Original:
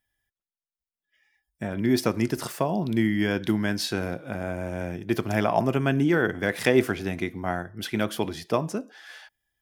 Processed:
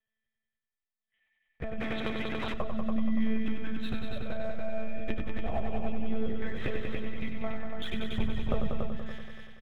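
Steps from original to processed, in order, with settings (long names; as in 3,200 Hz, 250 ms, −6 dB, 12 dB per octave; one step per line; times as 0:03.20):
flanger swept by the level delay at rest 4.5 ms, full sweep at −18.5 dBFS
parametric band 130 Hz +6.5 dB 1.9 octaves
one-pitch LPC vocoder at 8 kHz 220 Hz
comb filter 1.6 ms, depth 35%
leveller curve on the samples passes 1
downward compressor, threshold −27 dBFS, peak gain reduction 15.5 dB
0:08.08–0:08.73: low-shelf EQ 280 Hz +7 dB
echo machine with several playback heads 95 ms, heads all three, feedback 49%, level −7 dB
0:01.80–0:02.54: every bin compressed towards the loudest bin 2 to 1
level −4 dB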